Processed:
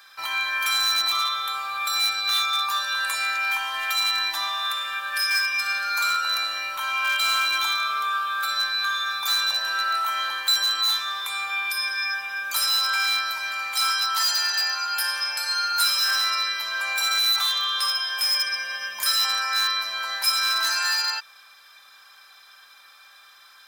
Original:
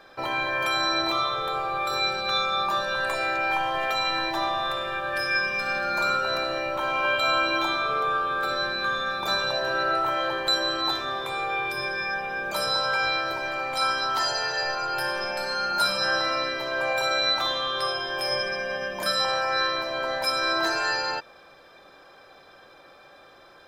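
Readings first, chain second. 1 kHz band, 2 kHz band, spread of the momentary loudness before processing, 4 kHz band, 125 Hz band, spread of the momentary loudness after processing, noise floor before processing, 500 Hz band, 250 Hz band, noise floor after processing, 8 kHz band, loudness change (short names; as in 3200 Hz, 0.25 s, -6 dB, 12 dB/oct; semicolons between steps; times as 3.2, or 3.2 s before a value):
-1.5 dB, +1.5 dB, 5 LU, +6.0 dB, under -20 dB, 6 LU, -52 dBFS, -19.5 dB, under -20 dB, -51 dBFS, +11.0 dB, +3.0 dB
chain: pre-emphasis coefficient 0.9; in parallel at -7 dB: wrapped overs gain 28.5 dB; on the sum: resonant low shelf 750 Hz -13 dB, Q 1.5; gain +8.5 dB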